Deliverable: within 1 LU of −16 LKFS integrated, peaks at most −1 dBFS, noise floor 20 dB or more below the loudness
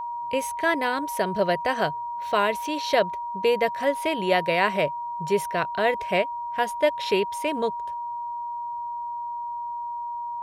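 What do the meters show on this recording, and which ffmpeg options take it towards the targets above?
interfering tone 950 Hz; level of the tone −29 dBFS; integrated loudness −26.0 LKFS; sample peak −7.0 dBFS; target loudness −16.0 LKFS
→ -af "bandreject=frequency=950:width=30"
-af "volume=10dB,alimiter=limit=-1dB:level=0:latency=1"

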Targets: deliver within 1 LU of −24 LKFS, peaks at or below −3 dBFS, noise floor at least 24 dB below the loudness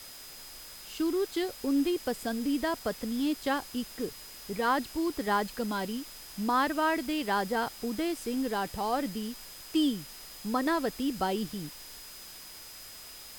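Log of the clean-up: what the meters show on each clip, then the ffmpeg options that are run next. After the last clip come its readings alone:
interfering tone 5,000 Hz; level of the tone −50 dBFS; background noise floor −47 dBFS; target noise floor −56 dBFS; integrated loudness −31.5 LKFS; sample peak −15.5 dBFS; target loudness −24.0 LKFS
→ -af "bandreject=frequency=5000:width=30"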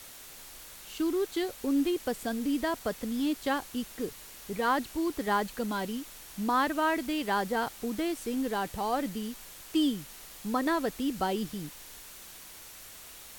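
interfering tone none found; background noise floor −48 dBFS; target noise floor −56 dBFS
→ -af "afftdn=noise_reduction=8:noise_floor=-48"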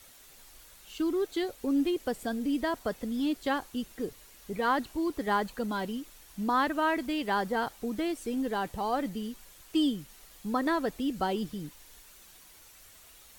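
background noise floor −55 dBFS; target noise floor −56 dBFS
→ -af "afftdn=noise_reduction=6:noise_floor=-55"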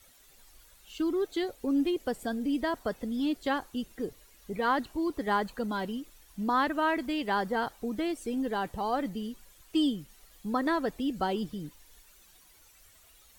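background noise floor −59 dBFS; integrated loudness −31.5 LKFS; sample peak −16.0 dBFS; target loudness −24.0 LKFS
→ -af "volume=7.5dB"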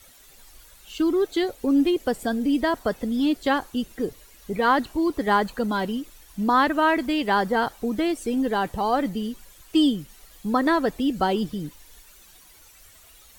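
integrated loudness −24.0 LKFS; sample peak −8.5 dBFS; background noise floor −52 dBFS

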